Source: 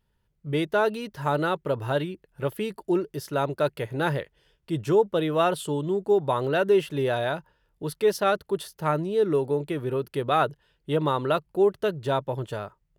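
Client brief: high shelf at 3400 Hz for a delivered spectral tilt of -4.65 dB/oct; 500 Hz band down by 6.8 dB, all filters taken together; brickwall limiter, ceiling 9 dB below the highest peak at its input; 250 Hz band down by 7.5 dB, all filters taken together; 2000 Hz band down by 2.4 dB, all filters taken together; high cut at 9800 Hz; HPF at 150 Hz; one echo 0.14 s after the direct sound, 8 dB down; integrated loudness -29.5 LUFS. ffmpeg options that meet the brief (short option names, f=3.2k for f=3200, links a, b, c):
-af "highpass=150,lowpass=9.8k,equalizer=f=250:t=o:g=-8,equalizer=f=500:t=o:g=-6,equalizer=f=2k:t=o:g=-4.5,highshelf=f=3.4k:g=5,alimiter=limit=-22dB:level=0:latency=1,aecho=1:1:140:0.398,volume=4dB"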